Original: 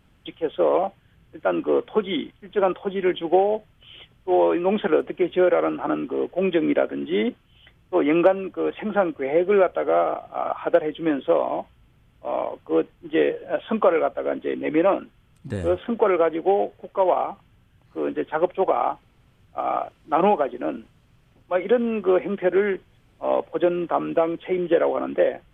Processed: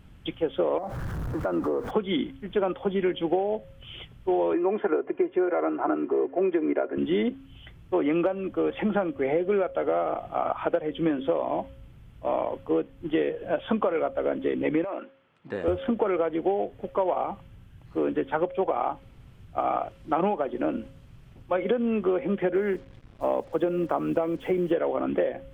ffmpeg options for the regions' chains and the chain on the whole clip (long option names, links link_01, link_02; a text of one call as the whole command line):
ffmpeg -i in.wav -filter_complex "[0:a]asettb=1/sr,asplit=3[link_01][link_02][link_03];[link_01]atrim=end=0.784[link_04];[link_02]atrim=start=0.78:end=1.91,asetpts=PTS-STARTPTS,afade=type=in:duration=0.004:curve=qsin,afade=type=out:start_time=1.126:duration=0.004:curve=qsin,aeval=exprs='val(0)+0.5*0.0211*sgn(val(0))':channel_layout=same,highshelf=frequency=1900:width_type=q:width=1.5:gain=-10.5,acompressor=threshold=-27dB:ratio=4:attack=3.2:release=140:knee=1:detection=peak[link_05];[link_03]atrim=start=1.906[link_06];[link_04][link_05]acrossfade=duration=0.004:curve1=hsin:curve2=qsin[link_07];[link_07][link_06]acrossfade=duration=0.004:curve1=qsin:curve2=hsin,asettb=1/sr,asplit=3[link_08][link_09][link_10];[link_08]atrim=end=4.534[link_11];[link_09]atrim=start=4.53:end=6.98,asetpts=PTS-STARTPTS,afade=type=in:duration=0.004:curve=qsin,afade=type=out:start_time=2.446:duration=0.004:curve=qsin,highpass=200,equalizer=frequency=260:width_type=q:width=4:gain=-7,equalizer=frequency=440:width_type=q:width=4:gain=3,equalizer=frequency=910:width_type=q:width=4:gain=4,lowpass=frequency=2100:width=0.5412,lowpass=frequency=2100:width=1.3066,aecho=1:1:2.9:0.53,atrim=end_sample=108045[link_12];[link_10]atrim=start=6.976[link_13];[link_11][link_12]acrossfade=duration=0.004:curve1=hsin:curve2=qsin[link_14];[link_14][link_13]acrossfade=duration=0.004:curve1=qsin:curve2=hsin,asettb=1/sr,asplit=3[link_15][link_16][link_17];[link_15]atrim=end=14.844[link_18];[link_16]atrim=start=14.84:end=15.68,asetpts=PTS-STARTPTS,afade=type=in:duration=0.004:curve=qsin,afade=type=out:start_time=0.836:duration=0.004:curve=qsin,highpass=460,lowpass=2600,acompressor=threshold=-24dB:ratio=10:attack=3.2:release=140:knee=1:detection=peak[link_19];[link_17]atrim=start=15.676[link_20];[link_18][link_19]acrossfade=duration=0.004:curve1=hsin:curve2=qsin[link_21];[link_21][link_20]acrossfade=duration=0.004:curve1=qsin:curve2=hsin,asettb=1/sr,asplit=3[link_22][link_23][link_24];[link_22]atrim=end=22.554[link_25];[link_23]atrim=start=22.55:end=24.72,asetpts=PTS-STARTPTS,afade=type=in:duration=0.004:curve=qsin,afade=type=out:start_time=2.166:duration=0.004:curve=qsin,lowpass=frequency=2800:poles=1,acrusher=bits=8:mix=0:aa=0.5[link_26];[link_24]atrim=start=24.716[link_27];[link_25][link_26]acrossfade=duration=0.004:curve1=hsin:curve2=qsin[link_28];[link_28][link_27]acrossfade=duration=0.004:curve1=qsin:curve2=hsin,lowshelf=frequency=230:gain=8,bandreject=frequency=270.4:width_type=h:width=4,bandreject=frequency=540.8:width_type=h:width=4,acompressor=threshold=-24dB:ratio=6,volume=2dB" out.wav